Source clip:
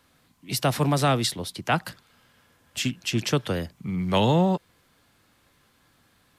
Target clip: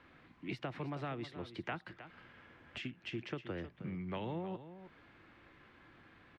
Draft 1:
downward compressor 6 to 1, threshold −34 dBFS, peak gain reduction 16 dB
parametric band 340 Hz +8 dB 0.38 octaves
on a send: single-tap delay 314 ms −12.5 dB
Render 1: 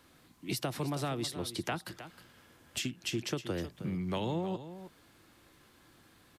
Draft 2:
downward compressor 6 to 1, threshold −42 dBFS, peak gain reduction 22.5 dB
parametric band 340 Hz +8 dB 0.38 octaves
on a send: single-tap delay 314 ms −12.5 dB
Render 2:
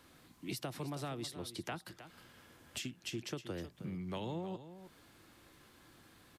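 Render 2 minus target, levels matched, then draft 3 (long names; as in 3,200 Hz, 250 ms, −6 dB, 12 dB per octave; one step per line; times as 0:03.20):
2,000 Hz band −3.5 dB
downward compressor 6 to 1, threshold −42 dBFS, peak gain reduction 22.5 dB
low-pass with resonance 2,200 Hz, resonance Q 1.6
parametric band 340 Hz +8 dB 0.38 octaves
on a send: single-tap delay 314 ms −12.5 dB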